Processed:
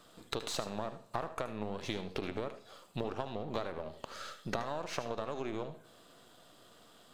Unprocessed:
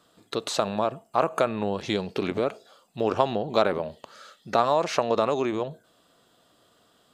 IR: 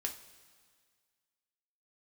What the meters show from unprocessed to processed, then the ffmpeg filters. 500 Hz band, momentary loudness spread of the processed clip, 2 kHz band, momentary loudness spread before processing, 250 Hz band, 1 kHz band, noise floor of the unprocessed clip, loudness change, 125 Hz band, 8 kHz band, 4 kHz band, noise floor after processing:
-14.5 dB, 21 LU, -9.5 dB, 9 LU, -11.5 dB, -14.5 dB, -64 dBFS, -13.5 dB, -8.0 dB, -7.5 dB, -9.0 dB, -60 dBFS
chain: -filter_complex "[0:a]aeval=exprs='if(lt(val(0),0),0.447*val(0),val(0))':c=same,acompressor=threshold=-38dB:ratio=10,asplit=2[a][b];[1:a]atrim=start_sample=2205,adelay=75[c];[b][c]afir=irnorm=-1:irlink=0,volume=-11dB[d];[a][d]amix=inputs=2:normalize=0,volume=4.5dB"

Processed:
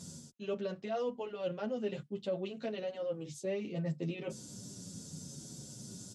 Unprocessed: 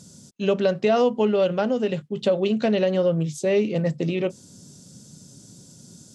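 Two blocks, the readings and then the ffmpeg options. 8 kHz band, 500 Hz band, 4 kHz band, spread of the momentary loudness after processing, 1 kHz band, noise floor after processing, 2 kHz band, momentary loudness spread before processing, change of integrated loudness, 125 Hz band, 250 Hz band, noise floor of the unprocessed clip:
-4.5 dB, -16.0 dB, -14.0 dB, 10 LU, -16.0 dB, -54 dBFS, -16.0 dB, 6 LU, -17.0 dB, -13.5 dB, -16.0 dB, -50 dBFS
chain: -filter_complex "[0:a]areverse,acompressor=threshold=-37dB:ratio=4,areverse,asplit=2[a][b];[b]adelay=8.7,afreqshift=-0.78[c];[a][c]amix=inputs=2:normalize=1,volume=2.5dB"

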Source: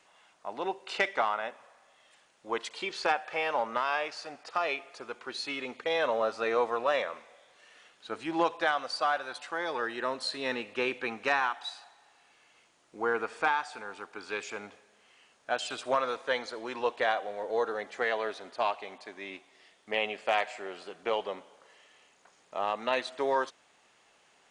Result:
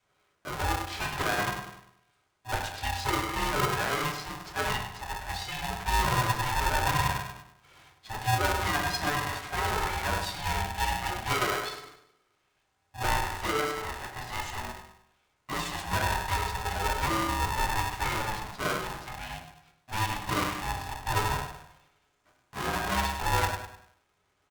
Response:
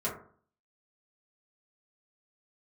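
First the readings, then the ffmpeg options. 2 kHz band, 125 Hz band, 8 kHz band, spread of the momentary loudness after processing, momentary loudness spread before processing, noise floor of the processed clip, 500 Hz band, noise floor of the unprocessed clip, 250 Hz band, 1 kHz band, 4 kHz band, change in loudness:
+2.0 dB, +24.5 dB, +12.5 dB, 11 LU, 14 LU, -73 dBFS, -5.0 dB, -65 dBFS, +3.5 dB, +3.0 dB, +4.0 dB, +2.0 dB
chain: -filter_complex "[0:a]agate=range=-13dB:threshold=-57dB:ratio=16:detection=peak,aecho=1:1:100|200|300|400:0.251|0.103|0.0422|0.0173,volume=30dB,asoftclip=hard,volume=-30dB[a];[1:a]atrim=start_sample=2205,asetrate=35721,aresample=44100[b];[a][b]afir=irnorm=-1:irlink=0,aeval=exprs='val(0)*sgn(sin(2*PI*440*n/s))':c=same,volume=-3dB"

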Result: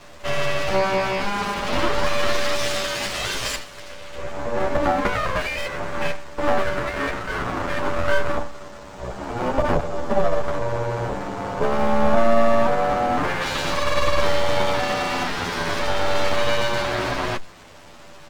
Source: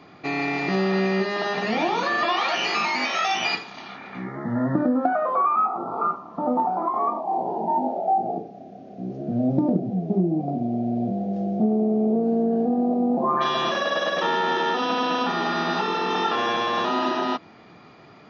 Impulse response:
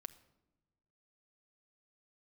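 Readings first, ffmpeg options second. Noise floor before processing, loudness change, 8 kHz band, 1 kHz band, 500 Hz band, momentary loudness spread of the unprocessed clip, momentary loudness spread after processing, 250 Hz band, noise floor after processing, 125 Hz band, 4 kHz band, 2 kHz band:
-48 dBFS, +0.5 dB, n/a, -1.0 dB, +4.0 dB, 7 LU, 8 LU, -5.5 dB, -42 dBFS, +1.0 dB, +2.0 dB, +2.5 dB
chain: -filter_complex "[0:a]equalizer=f=125:t=o:w=1:g=-7,equalizer=f=500:t=o:w=1:g=9,equalizer=f=1k:t=o:w=1:g=-6,aresample=16000,acrusher=bits=7:mix=0:aa=0.000001,aresample=44100,aeval=exprs='val(0)*sin(2*PI*290*n/s)':c=same,aeval=exprs='abs(val(0))':c=same,asplit=2[a][b];[b]adelay=9.7,afreqshift=-0.5[c];[a][c]amix=inputs=2:normalize=1,volume=8.5dB"

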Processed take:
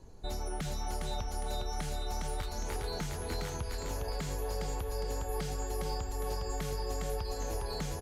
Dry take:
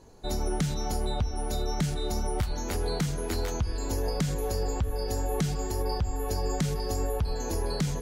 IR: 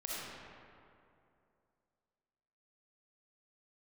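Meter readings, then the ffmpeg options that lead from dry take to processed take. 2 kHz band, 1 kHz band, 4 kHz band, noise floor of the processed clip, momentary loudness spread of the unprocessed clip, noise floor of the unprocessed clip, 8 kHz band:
-3.5 dB, -4.0 dB, -4.5 dB, -39 dBFS, 2 LU, -32 dBFS, -5.0 dB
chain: -filter_complex "[0:a]lowshelf=f=130:g=10.5,aecho=1:1:409|818|1227|1636:0.631|0.221|0.0773|0.0271,acrossover=split=470|3400[a][b][c];[a]acompressor=threshold=-32dB:ratio=4[d];[c]aeval=exprs='0.0133*(abs(mod(val(0)/0.0133+3,4)-2)-1)':c=same[e];[d][b][e]amix=inputs=3:normalize=0,aresample=32000,aresample=44100,volume=-5dB"

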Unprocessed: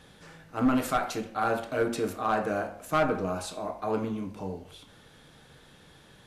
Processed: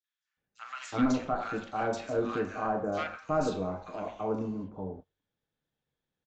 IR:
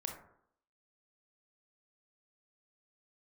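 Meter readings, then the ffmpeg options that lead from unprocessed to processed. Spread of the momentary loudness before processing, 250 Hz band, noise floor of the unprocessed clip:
12 LU, -2.0 dB, -56 dBFS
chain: -filter_complex "[0:a]agate=range=-30dB:threshold=-42dB:ratio=16:detection=peak,acrossover=split=1300|4200[a][b][c];[b]adelay=40[d];[a]adelay=370[e];[e][d][c]amix=inputs=3:normalize=0,aresample=16000,aresample=44100,volume=-2dB"

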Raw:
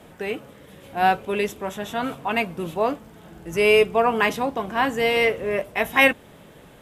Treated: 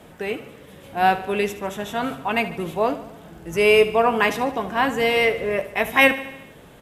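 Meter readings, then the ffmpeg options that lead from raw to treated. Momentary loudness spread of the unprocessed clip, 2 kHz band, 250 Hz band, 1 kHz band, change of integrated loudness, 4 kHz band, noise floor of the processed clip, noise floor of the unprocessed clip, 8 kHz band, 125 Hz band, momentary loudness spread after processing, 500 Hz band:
14 LU, +1.0 dB, +1.5 dB, +1.0 dB, +1.0 dB, +1.5 dB, -46 dBFS, -48 dBFS, +1.0 dB, +1.0 dB, 14 LU, +1.0 dB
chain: -af "aecho=1:1:74|148|222|296|370|444:0.188|0.111|0.0656|0.0387|0.0228|0.0135,volume=1dB"

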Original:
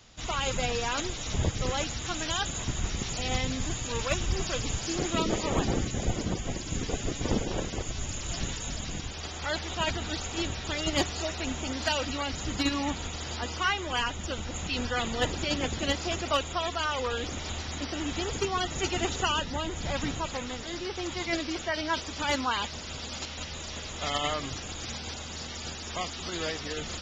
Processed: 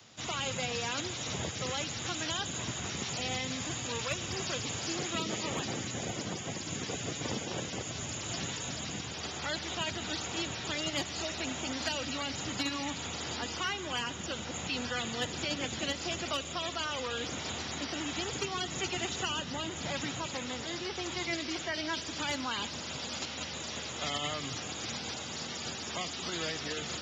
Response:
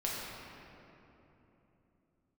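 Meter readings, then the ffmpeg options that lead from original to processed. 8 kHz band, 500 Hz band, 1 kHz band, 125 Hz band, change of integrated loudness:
-1.5 dB, -5.5 dB, -6.0 dB, -7.0 dB, -3.5 dB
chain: -filter_complex "[0:a]highpass=f=100:w=0.5412,highpass=f=100:w=1.3066,acrossover=split=220|540|1700|5800[a][b][c][d][e];[a]acompressor=threshold=-41dB:ratio=4[f];[b]acompressor=threshold=-44dB:ratio=4[g];[c]acompressor=threshold=-42dB:ratio=4[h];[d]acompressor=threshold=-35dB:ratio=4[i];[e]acompressor=threshold=-44dB:ratio=4[j];[f][g][h][i][j]amix=inputs=5:normalize=0,asplit=2[k][l];[1:a]atrim=start_sample=2205,asetrate=26901,aresample=44100,adelay=81[m];[l][m]afir=irnorm=-1:irlink=0,volume=-22dB[n];[k][n]amix=inputs=2:normalize=0"

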